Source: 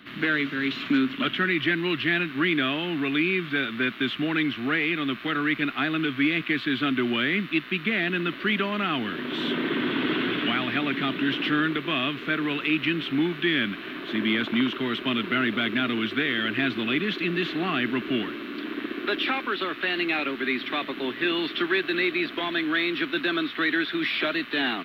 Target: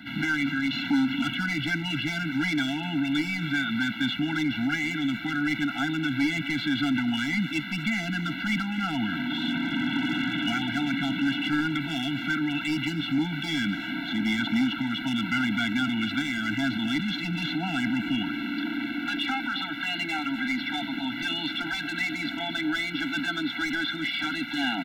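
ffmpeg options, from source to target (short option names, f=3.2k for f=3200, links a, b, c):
-filter_complex "[0:a]asoftclip=type=hard:threshold=-20dB,alimiter=level_in=2dB:limit=-24dB:level=0:latency=1:release=12,volume=-2dB,asplit=2[a][b];[b]aecho=0:1:248:0.15[c];[a][c]amix=inputs=2:normalize=0,afftfilt=real='re*eq(mod(floor(b*sr/1024/330),2),0)':imag='im*eq(mod(floor(b*sr/1024/330),2),0)':win_size=1024:overlap=0.75,volume=7dB"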